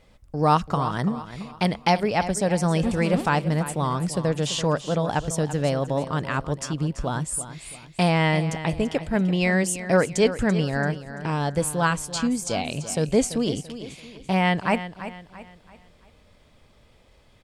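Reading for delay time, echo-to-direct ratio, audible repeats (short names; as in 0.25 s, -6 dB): 0.337 s, -12.0 dB, 3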